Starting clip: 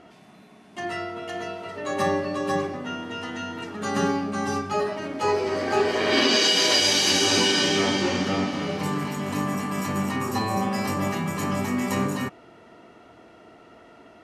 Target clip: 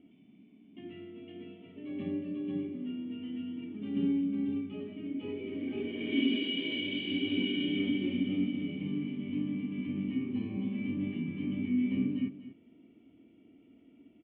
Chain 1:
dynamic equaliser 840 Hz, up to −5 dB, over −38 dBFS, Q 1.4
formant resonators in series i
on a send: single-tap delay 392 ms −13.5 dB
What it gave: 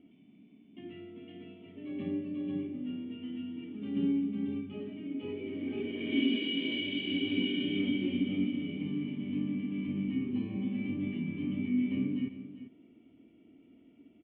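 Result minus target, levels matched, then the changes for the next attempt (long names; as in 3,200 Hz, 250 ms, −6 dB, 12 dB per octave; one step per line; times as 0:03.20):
echo 155 ms late
change: single-tap delay 237 ms −13.5 dB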